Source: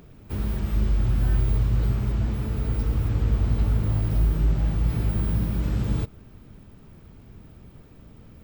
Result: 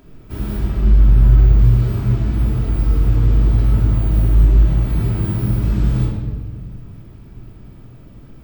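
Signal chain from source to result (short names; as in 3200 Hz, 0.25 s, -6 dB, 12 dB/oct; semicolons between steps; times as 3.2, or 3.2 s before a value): 0.65–1.59 high shelf 4900 Hz -9 dB; 3.94–5.01 notch 5100 Hz, Q 11; shoebox room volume 1100 m³, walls mixed, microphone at 2.9 m; gain -1 dB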